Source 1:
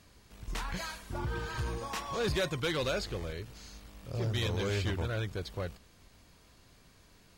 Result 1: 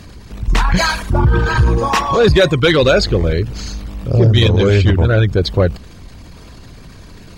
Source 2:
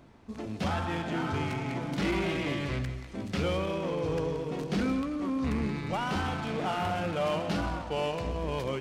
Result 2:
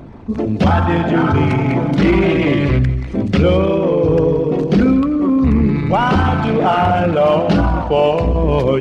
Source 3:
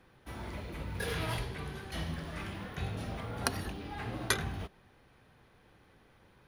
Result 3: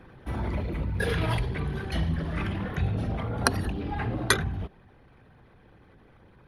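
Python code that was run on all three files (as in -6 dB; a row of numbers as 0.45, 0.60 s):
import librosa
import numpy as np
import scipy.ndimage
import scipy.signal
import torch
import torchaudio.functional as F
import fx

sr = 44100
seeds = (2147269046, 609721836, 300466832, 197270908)

p1 = fx.envelope_sharpen(x, sr, power=1.5)
p2 = fx.rider(p1, sr, range_db=5, speed_s=0.5)
p3 = p1 + (p2 * librosa.db_to_amplitude(1.0))
y = librosa.util.normalize(p3) * 10.0 ** (-1.5 / 20.0)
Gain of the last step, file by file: +15.5, +11.0, +3.0 dB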